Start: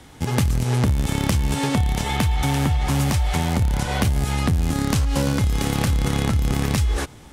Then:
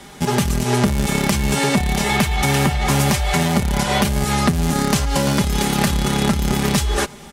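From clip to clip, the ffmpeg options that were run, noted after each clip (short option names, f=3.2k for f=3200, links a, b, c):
-af "lowshelf=f=100:g=-9.5,aecho=1:1:5:0.79,alimiter=level_in=11dB:limit=-1dB:release=50:level=0:latency=1,volume=-5dB"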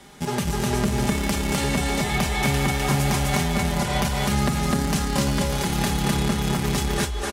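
-af "aecho=1:1:43.73|253.6:0.282|0.891,volume=-7.5dB"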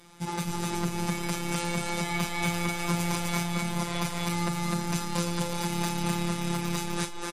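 -filter_complex "[0:a]afftfilt=real='hypot(re,im)*cos(PI*b)':imag='0':win_size=1024:overlap=0.75,asplit=2[a][b];[b]adelay=43,volume=-13.5dB[c];[a][c]amix=inputs=2:normalize=0,volume=-2.5dB" -ar 48000 -c:a libmp3lame -b:a 56k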